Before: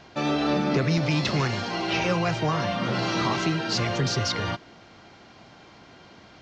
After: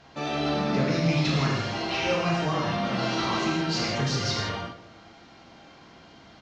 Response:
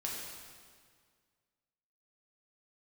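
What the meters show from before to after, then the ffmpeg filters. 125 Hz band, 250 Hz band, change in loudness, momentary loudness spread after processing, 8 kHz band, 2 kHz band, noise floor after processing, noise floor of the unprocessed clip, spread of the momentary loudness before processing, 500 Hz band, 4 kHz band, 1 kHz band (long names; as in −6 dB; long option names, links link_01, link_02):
−1.0 dB, −1.0 dB, −1.0 dB, 5 LU, can't be measured, −1.5 dB, −51 dBFS, −51 dBFS, 4 LU, −1.0 dB, −0.5 dB, −1.0 dB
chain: -filter_complex "[0:a]asplit=2[link_01][link_02];[link_02]adelay=105,lowpass=frequency=2000:poles=1,volume=-14dB,asplit=2[link_03][link_04];[link_04]adelay=105,lowpass=frequency=2000:poles=1,volume=0.54,asplit=2[link_05][link_06];[link_06]adelay=105,lowpass=frequency=2000:poles=1,volume=0.54,asplit=2[link_07][link_08];[link_08]adelay=105,lowpass=frequency=2000:poles=1,volume=0.54,asplit=2[link_09][link_10];[link_10]adelay=105,lowpass=frequency=2000:poles=1,volume=0.54[link_11];[link_01][link_03][link_05][link_07][link_09][link_11]amix=inputs=6:normalize=0[link_12];[1:a]atrim=start_sample=2205,afade=type=out:start_time=0.18:duration=0.01,atrim=end_sample=8379,asetrate=31752,aresample=44100[link_13];[link_12][link_13]afir=irnorm=-1:irlink=0,volume=-4dB"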